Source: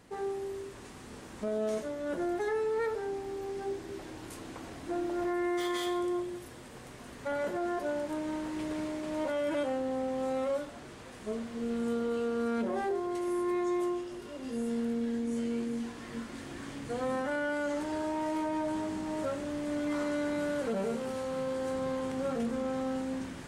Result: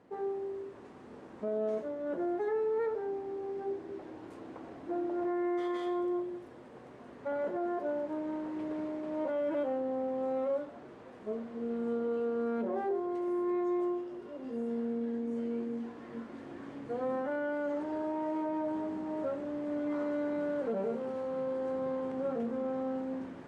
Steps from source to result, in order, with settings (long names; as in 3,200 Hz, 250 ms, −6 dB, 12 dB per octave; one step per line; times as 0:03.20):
resonant band-pass 470 Hz, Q 0.63